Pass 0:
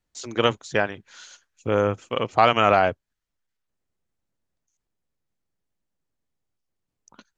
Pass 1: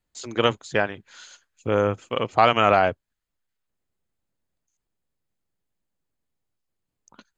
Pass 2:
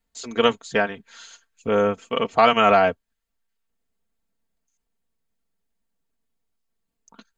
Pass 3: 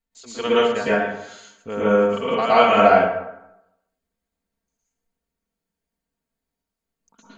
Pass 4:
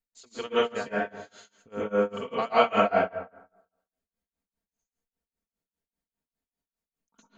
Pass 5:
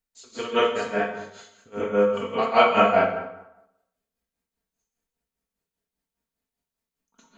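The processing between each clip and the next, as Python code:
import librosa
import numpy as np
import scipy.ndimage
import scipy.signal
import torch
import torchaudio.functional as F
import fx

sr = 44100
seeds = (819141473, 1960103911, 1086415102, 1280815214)

y1 = fx.notch(x, sr, hz=5700.0, q=8.8)
y2 = y1 + 0.67 * np.pad(y1, (int(4.4 * sr / 1000.0), 0))[:len(y1)]
y3 = fx.rev_plate(y2, sr, seeds[0], rt60_s=0.87, hf_ratio=0.6, predelay_ms=100, drr_db=-10.0)
y3 = y3 * 10.0 ** (-9.0 / 20.0)
y4 = y3 * (1.0 - 0.95 / 2.0 + 0.95 / 2.0 * np.cos(2.0 * np.pi * 5.0 * (np.arange(len(y3)) / sr)))
y4 = y4 * 10.0 ** (-5.0 / 20.0)
y5 = fx.rev_plate(y4, sr, seeds[1], rt60_s=0.63, hf_ratio=0.95, predelay_ms=0, drr_db=1.5)
y5 = y5 * 10.0 ** (2.5 / 20.0)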